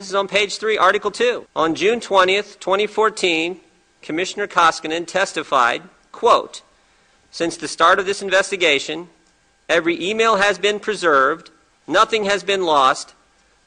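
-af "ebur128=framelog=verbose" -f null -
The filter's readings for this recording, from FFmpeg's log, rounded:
Integrated loudness:
  I:         -17.7 LUFS
  Threshold: -28.4 LUFS
Loudness range:
  LRA:         2.2 LU
  Threshold: -38.6 LUFS
  LRA low:   -19.7 LUFS
  LRA high:  -17.4 LUFS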